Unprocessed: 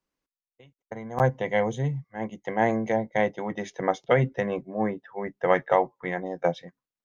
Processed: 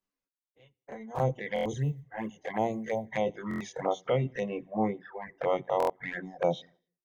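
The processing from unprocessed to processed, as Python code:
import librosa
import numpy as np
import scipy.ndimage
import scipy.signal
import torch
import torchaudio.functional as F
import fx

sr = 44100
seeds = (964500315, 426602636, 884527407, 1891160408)

p1 = fx.spec_dilate(x, sr, span_ms=60)
p2 = fx.hum_notches(p1, sr, base_hz=60, count=7)
p3 = p2 + fx.echo_feedback(p2, sr, ms=86, feedback_pct=42, wet_db=-19.0, dry=0)
p4 = fx.rider(p3, sr, range_db=3, speed_s=0.5)
p5 = fx.env_flanger(p4, sr, rest_ms=10.6, full_db=-19.5)
p6 = fx.quant_float(p5, sr, bits=6, at=(1.81, 3.1))
p7 = fx.dereverb_blind(p6, sr, rt60_s=1.7)
p8 = fx.buffer_glitch(p7, sr, at_s=(1.54, 3.49, 5.78), block=1024, repeats=4)
y = p8 * 10.0 ** (-4.5 / 20.0)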